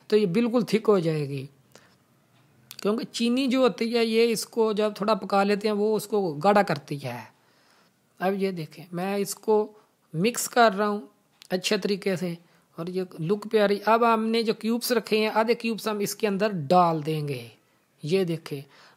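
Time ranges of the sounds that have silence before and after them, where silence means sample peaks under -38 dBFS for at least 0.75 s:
2.71–7.26 s

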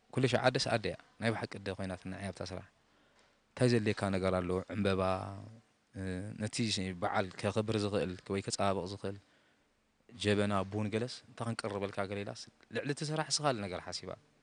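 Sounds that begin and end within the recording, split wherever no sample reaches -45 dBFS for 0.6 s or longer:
3.57–9.17 s

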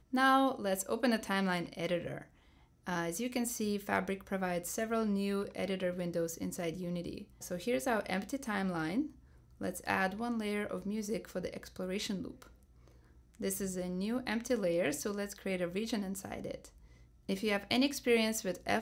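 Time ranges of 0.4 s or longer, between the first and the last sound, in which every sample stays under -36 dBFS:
2.18–2.87 s
9.06–9.61 s
12.42–13.41 s
16.65–17.29 s

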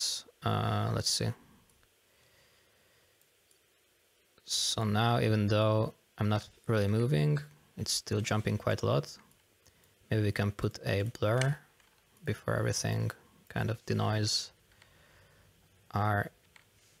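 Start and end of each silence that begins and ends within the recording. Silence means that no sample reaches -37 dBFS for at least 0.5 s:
1.32–4.49 s
9.10–10.12 s
11.54–12.28 s
14.46–15.91 s

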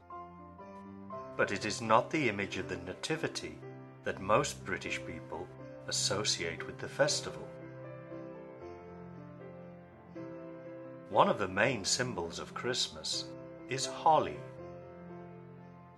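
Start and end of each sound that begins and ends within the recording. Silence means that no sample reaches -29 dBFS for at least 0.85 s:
1.39–7.28 s
11.13–14.28 s

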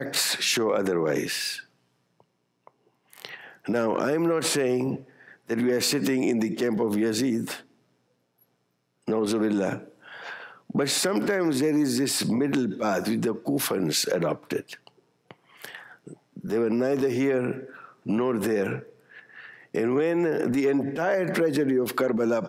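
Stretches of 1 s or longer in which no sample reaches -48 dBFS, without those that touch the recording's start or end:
7.63–9.07 s

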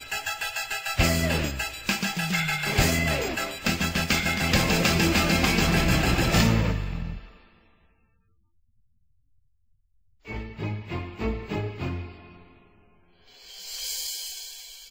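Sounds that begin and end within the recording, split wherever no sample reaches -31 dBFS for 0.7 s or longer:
10.29–12.06 s

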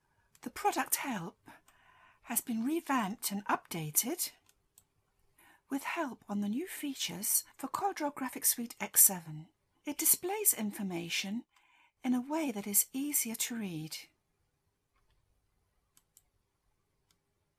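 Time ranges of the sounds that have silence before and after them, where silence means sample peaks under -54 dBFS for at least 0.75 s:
15.97–16.17 s

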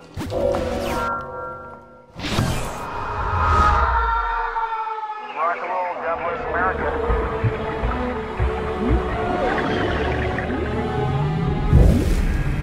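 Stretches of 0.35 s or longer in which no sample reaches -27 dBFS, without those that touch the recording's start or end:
1.74–2.19 s

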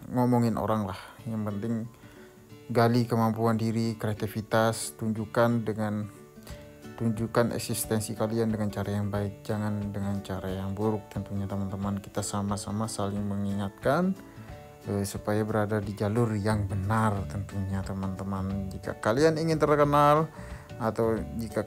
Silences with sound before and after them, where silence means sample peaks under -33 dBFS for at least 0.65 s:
1.86–2.70 s

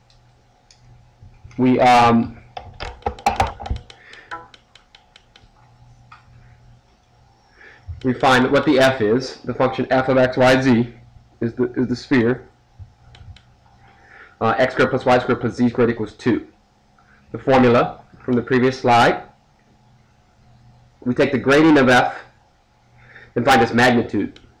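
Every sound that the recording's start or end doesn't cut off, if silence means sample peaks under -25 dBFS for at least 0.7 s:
1.59–4.36 s
7.89–12.37 s
14.41–16.39 s
17.34–19.18 s
21.06–22.17 s

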